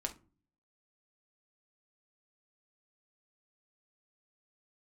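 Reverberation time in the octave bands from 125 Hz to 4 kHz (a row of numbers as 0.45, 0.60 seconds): 0.70, 0.65, 0.40, 0.30, 0.25, 0.20 seconds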